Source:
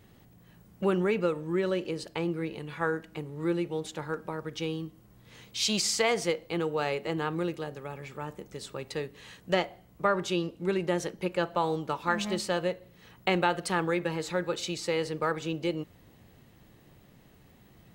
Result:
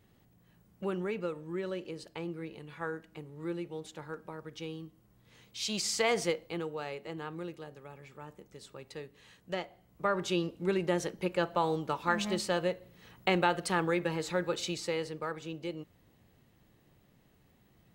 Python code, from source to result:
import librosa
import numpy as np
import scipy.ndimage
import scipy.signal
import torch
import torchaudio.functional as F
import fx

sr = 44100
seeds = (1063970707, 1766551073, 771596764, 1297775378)

y = fx.gain(x, sr, db=fx.line((5.59, -8.0), (6.19, -1.0), (6.83, -9.5), (9.67, -9.5), (10.3, -1.5), (14.7, -1.5), (15.25, -8.0)))